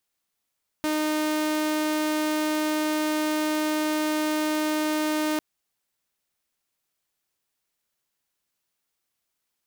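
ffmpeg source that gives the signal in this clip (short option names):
-f lavfi -i "aevalsrc='0.0944*(2*mod(307*t,1)-1)':d=4.55:s=44100"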